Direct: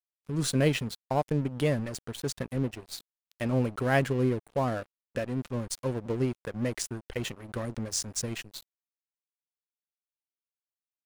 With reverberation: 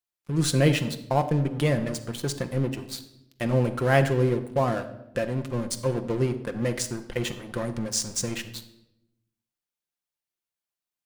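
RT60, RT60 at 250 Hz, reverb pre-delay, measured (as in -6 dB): 0.85 s, 1.2 s, 6 ms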